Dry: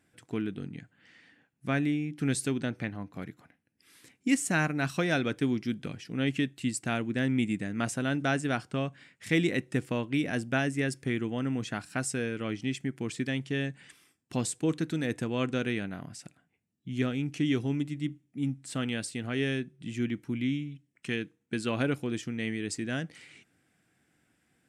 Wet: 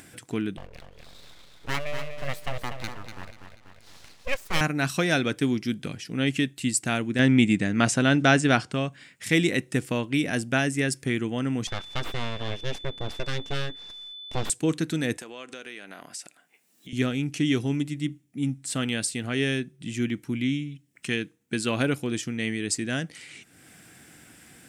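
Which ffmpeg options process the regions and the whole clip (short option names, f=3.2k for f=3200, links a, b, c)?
-filter_complex "[0:a]asettb=1/sr,asplit=3[a][b][c];[a]atrim=end=0.574[d];[b]atrim=start=0.57:end=4.61,asetpts=PTS-STARTPTS,afade=t=in:d=0.004:c=qsin,afade=t=out:st=4.036:d=0.004:c=qsin,highpass=310,lowpass=2.5k,aeval=exprs='abs(val(0))':c=same,aecho=1:1:243|486|729|972:0.398|0.131|0.0434|0.0143,atrim=end_sample=178164[e];[c]atrim=start=4.606[f];[d][e]acrossfade=d=0.004:c1=hsin:c2=qsin[g];[g][f]acrossfade=d=0.004:c1=qsin:c2=hsin,asettb=1/sr,asplit=3[h][i][j];[h]atrim=end=7.194[k];[i]atrim=start=7.19:end=8.72,asetpts=PTS-STARTPTS,afade=t=in:d=0.004:c=qsin,afade=t=out:st=1.526:d=0.004:c=qsin,lowpass=6.3k,acontrast=29[l];[j]atrim=start=8.716[m];[k][l]acrossfade=d=0.004:c1=hsin:c2=qsin[n];[n][m]acrossfade=d=0.004:c1=qsin:c2=hsin,asettb=1/sr,asplit=3[o][p][q];[o]atrim=end=11.674[r];[p]atrim=start=11.67:end=14.5,asetpts=PTS-STARTPTS,afade=t=in:d=0.004:c=qsin,afade=t=out:st=2.826:d=0.004:c=qsin,aeval=exprs='abs(val(0))':c=same,aeval=exprs='val(0)+0.00562*sin(2*PI*3500*n/s)':c=same,adynamicsmooth=sensitivity=1:basefreq=5k[s];[q]atrim=start=14.496[t];[r][s]acrossfade=d=0.004:c1=hsin:c2=qsin[u];[u][t]acrossfade=d=0.004:c1=qsin:c2=hsin,asettb=1/sr,asplit=3[v][w][x];[v]atrim=end=15.174[y];[w]atrim=start=15.17:end=16.93,asetpts=PTS-STARTPTS,afade=t=in:d=0.004:c=qsin,afade=t=out:st=1.756:d=0.004:c=qsin,highpass=450,acompressor=threshold=-42dB:ratio=4:attack=3.2:release=140:knee=1:detection=peak[z];[x]atrim=start=16.926[aa];[y][z]acrossfade=d=0.004:c1=hsin:c2=qsin[ab];[ab][aa]acrossfade=d=0.004:c1=qsin:c2=hsin,highshelf=f=4k:g=8.5,acompressor=mode=upward:threshold=-41dB:ratio=2.5,volume=3.5dB"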